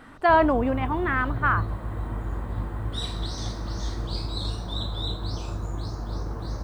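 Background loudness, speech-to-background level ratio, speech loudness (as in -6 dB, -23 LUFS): -32.0 LUFS, 8.5 dB, -23.5 LUFS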